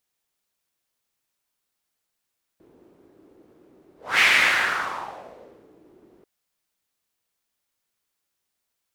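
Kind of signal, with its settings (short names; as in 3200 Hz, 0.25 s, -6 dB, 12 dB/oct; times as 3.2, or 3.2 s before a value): whoosh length 3.64 s, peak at 1.61, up 0.26 s, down 1.71 s, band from 350 Hz, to 2200 Hz, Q 3.2, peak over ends 38 dB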